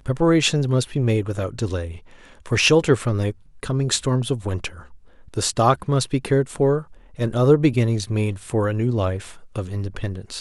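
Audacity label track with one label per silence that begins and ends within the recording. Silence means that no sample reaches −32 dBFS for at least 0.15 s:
1.980000	2.460000	silence
3.320000	3.630000	silence
4.800000	5.340000	silence
6.820000	7.190000	silence
9.320000	9.560000	silence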